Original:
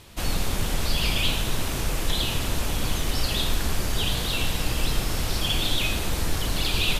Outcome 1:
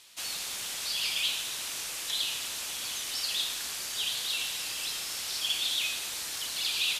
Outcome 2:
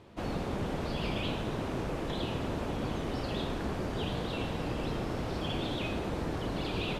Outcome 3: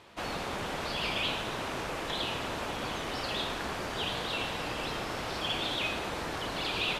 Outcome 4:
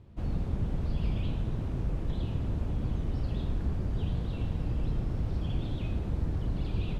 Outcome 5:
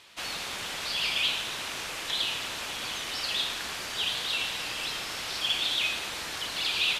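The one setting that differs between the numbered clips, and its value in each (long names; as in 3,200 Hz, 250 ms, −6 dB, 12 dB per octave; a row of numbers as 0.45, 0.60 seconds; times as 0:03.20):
resonant band-pass, frequency: 6,600, 370, 920, 100, 2,600 Hertz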